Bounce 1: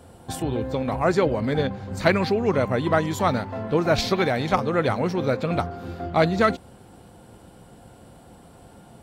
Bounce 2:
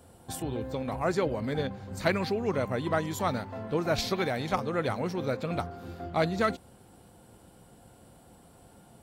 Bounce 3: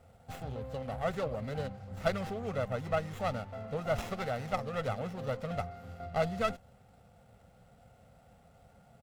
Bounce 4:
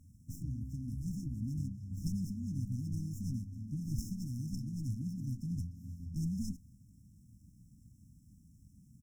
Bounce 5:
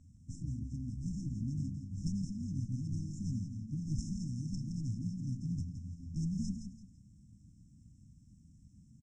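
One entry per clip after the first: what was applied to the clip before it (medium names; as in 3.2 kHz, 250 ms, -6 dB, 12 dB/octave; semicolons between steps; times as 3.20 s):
treble shelf 7.7 kHz +8.5 dB; trim -7.5 dB
comb 1.5 ms, depth 85%; sliding maximum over 9 samples; trim -7 dB
FFT band-reject 330–5200 Hz; trim +2.5 dB
steep low-pass 8.2 kHz 48 dB/octave; on a send: feedback delay 168 ms, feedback 29%, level -8 dB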